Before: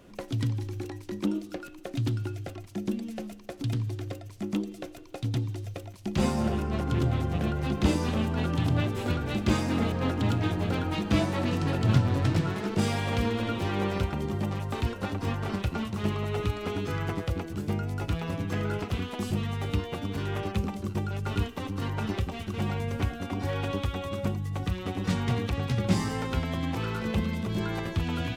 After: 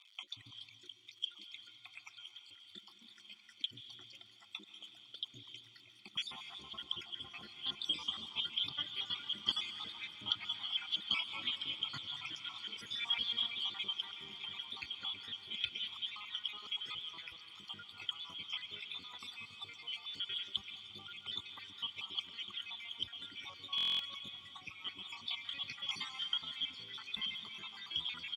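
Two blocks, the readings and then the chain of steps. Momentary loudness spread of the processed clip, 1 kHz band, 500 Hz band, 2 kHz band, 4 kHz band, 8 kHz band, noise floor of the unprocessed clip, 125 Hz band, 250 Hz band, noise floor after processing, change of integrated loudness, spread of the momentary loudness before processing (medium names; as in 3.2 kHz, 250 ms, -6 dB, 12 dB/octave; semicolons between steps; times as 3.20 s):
16 LU, -17.5 dB, -32.0 dB, -9.0 dB, +5.5 dB, -15.0 dB, -44 dBFS, -36.5 dB, -32.0 dB, -62 dBFS, -9.5 dB, 8 LU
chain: random holes in the spectrogram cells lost 68%; crackle 170 per s -44 dBFS; band-pass filter 3.2 kHz, Q 8.9; reverb removal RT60 1.8 s; comb 0.9 ms, depth 63%; on a send: echo that smears into a reverb 1393 ms, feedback 48%, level -15 dB; on the sum: plate-style reverb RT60 2.3 s, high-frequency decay 0.95×, pre-delay 120 ms, DRR 9 dB; buffer glitch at 23.76 s, samples 1024, times 9; trim +13 dB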